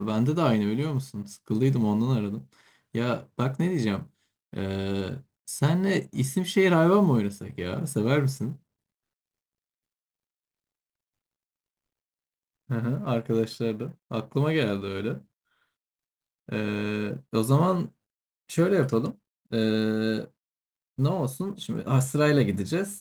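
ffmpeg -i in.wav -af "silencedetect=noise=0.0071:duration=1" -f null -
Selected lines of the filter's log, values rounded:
silence_start: 8.56
silence_end: 12.70 | silence_duration: 4.14
silence_start: 15.21
silence_end: 16.49 | silence_duration: 1.27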